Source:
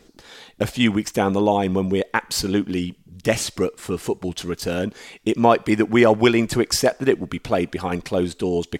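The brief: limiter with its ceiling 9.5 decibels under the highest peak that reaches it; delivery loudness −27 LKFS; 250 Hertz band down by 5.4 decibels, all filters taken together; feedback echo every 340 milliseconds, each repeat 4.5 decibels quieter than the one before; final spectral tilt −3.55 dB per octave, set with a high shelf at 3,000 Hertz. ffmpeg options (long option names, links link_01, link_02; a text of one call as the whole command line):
ffmpeg -i in.wav -af "equalizer=frequency=250:width_type=o:gain=-7.5,highshelf=frequency=3000:gain=6,alimiter=limit=-11.5dB:level=0:latency=1,aecho=1:1:340|680|1020|1360|1700|2040|2380|2720|3060:0.596|0.357|0.214|0.129|0.0772|0.0463|0.0278|0.0167|0.01,volume=-4dB" out.wav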